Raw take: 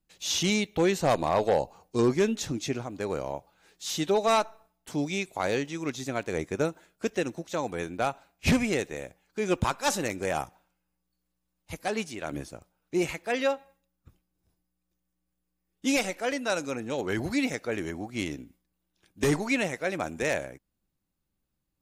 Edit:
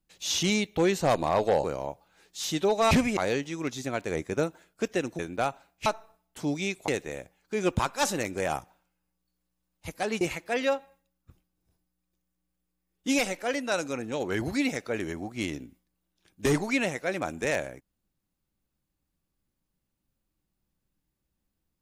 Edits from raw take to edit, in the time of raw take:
1.64–3.10 s: delete
4.37–5.39 s: swap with 8.47–8.73 s
7.41–7.80 s: delete
12.06–12.99 s: delete

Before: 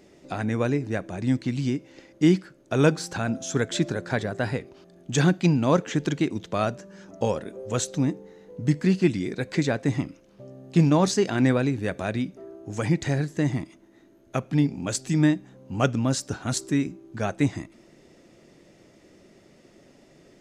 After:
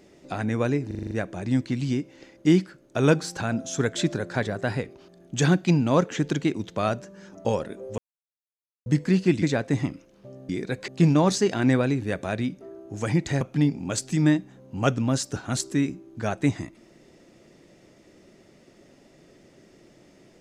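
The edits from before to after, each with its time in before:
0.87 s: stutter 0.04 s, 7 plays
7.74–8.62 s: mute
9.18–9.57 s: move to 10.64 s
13.17–14.38 s: delete

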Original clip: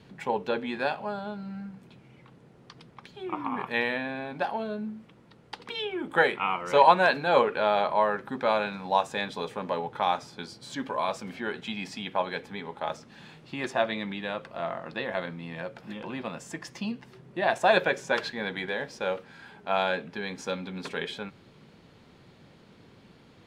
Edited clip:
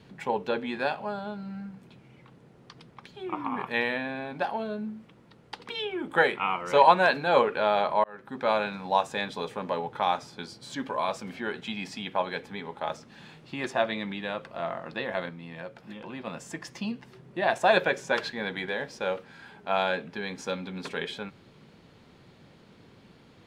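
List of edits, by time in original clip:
8.04–8.50 s: fade in
15.29–16.27 s: gain -3.5 dB

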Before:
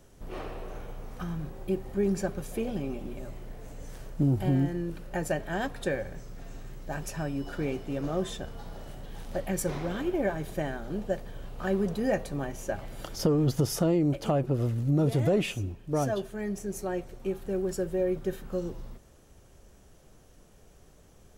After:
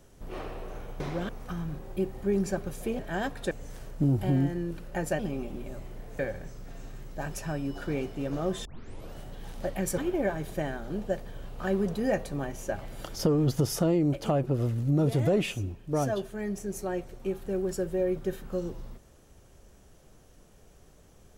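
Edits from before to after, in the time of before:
2.70–3.70 s: swap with 5.38–5.90 s
8.36 s: tape start 0.49 s
9.69–9.98 s: move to 1.00 s

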